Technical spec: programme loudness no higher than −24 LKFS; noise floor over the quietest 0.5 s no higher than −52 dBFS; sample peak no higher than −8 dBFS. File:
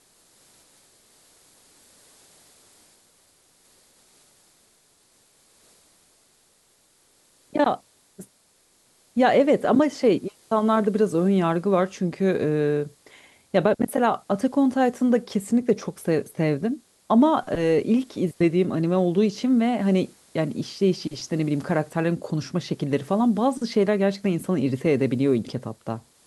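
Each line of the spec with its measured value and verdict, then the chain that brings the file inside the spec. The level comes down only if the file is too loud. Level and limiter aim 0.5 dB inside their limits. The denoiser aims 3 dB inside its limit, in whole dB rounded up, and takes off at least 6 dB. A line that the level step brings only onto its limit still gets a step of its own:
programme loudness −23.0 LKFS: out of spec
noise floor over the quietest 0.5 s −62 dBFS: in spec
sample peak −6.5 dBFS: out of spec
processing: level −1.5 dB
brickwall limiter −8.5 dBFS

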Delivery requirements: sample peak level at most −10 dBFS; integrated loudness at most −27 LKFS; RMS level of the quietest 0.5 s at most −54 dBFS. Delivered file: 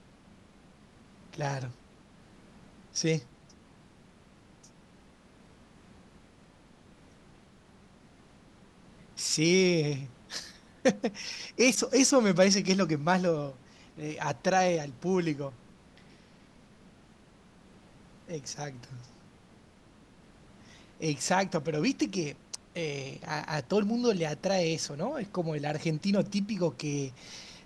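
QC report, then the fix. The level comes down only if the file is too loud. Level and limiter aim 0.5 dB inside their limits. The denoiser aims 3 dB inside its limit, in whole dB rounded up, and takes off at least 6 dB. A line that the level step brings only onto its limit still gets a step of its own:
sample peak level −9.0 dBFS: out of spec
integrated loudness −29.5 LKFS: in spec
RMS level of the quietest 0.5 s −58 dBFS: in spec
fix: brickwall limiter −10.5 dBFS

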